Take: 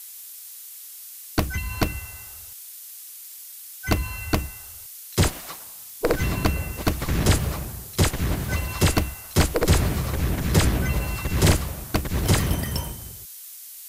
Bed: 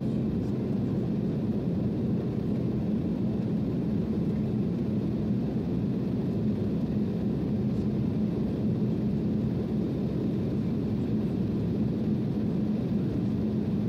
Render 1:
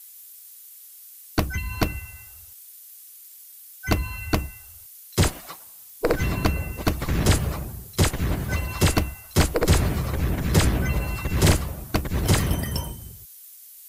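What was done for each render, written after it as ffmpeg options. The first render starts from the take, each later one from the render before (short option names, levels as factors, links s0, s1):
-af "afftdn=nr=8:nf=-41"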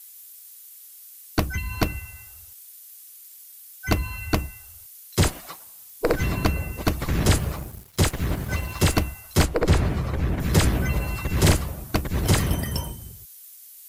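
-filter_complex "[0:a]asettb=1/sr,asplit=3[s0][s1][s2];[s0]atrim=end=7.394[s3];[s1]atrim=start=7.39:end=8.94,asetpts=PTS-STARTPTS,afade=t=in:d=0.004:c=qsin,afade=t=out:st=1.546:d=0.004:c=qsin,aeval=exprs='sgn(val(0))*max(abs(val(0))-0.00841,0)':c=same[s4];[s2]atrim=start=8.936[s5];[s3][s4]acrossfade=d=0.004:c1=hsin:c2=qsin[s6];[s6][s5]acrossfade=d=0.004:c1=qsin:c2=hsin,asettb=1/sr,asplit=3[s7][s8][s9];[s7]atrim=end=9.454[s10];[s8]atrim=start=9.45:end=10.4,asetpts=PTS-STARTPTS,afade=t=in:d=0.004:c=qsin,afade=t=out:st=0.946:d=0.004:c=qsin,aemphasis=mode=reproduction:type=50kf[s11];[s9]atrim=start=10.396[s12];[s10][s11]acrossfade=d=0.004:c1=hsin:c2=qsin[s13];[s13][s12]acrossfade=d=0.004:c1=qsin:c2=hsin"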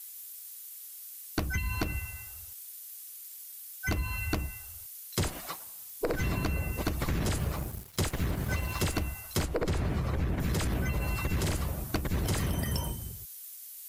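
-af "alimiter=limit=0.158:level=0:latency=1:release=66,acompressor=threshold=0.0447:ratio=4"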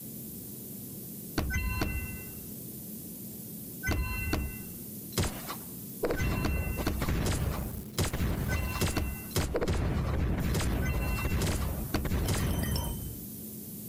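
-filter_complex "[1:a]volume=0.15[s0];[0:a][s0]amix=inputs=2:normalize=0"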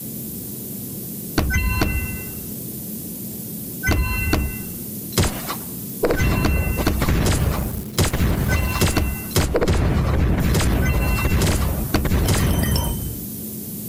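-af "volume=3.76"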